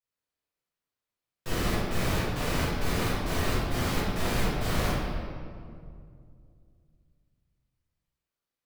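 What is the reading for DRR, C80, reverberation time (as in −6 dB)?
−12.0 dB, 0.0 dB, 2.3 s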